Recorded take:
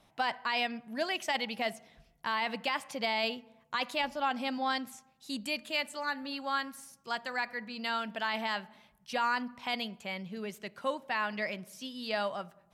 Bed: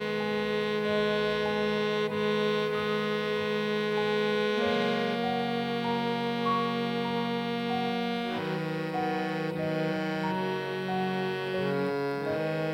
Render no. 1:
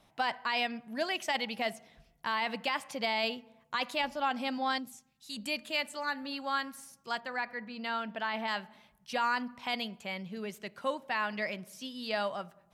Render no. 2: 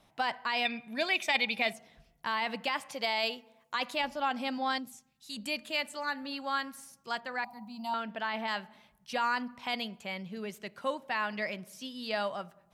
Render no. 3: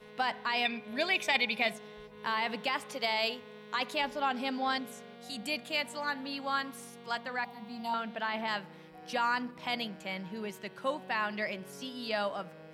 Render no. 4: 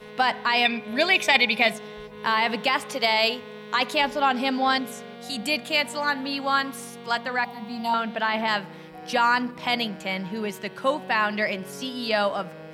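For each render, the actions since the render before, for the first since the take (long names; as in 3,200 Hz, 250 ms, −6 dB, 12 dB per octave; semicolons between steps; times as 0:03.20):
0:04.78–0:05.36: parametric band 2,000 Hz → 370 Hz −13.5 dB 2.1 octaves; 0:07.20–0:08.48: parametric band 9,200 Hz −11 dB 2 octaves
0:00.65–0:01.73: hollow resonant body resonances 2,400/3,600 Hz, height 18 dB, ringing for 20 ms; 0:02.94–0:03.76: bass and treble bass −10 dB, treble +4 dB; 0:07.44–0:07.94: drawn EQ curve 250 Hz 0 dB, 360 Hz −27 dB, 520 Hz −16 dB, 820 Hz +13 dB, 1,700 Hz −25 dB, 2,700 Hz −9 dB, 11,000 Hz +12 dB
mix in bed −21 dB
level +9.5 dB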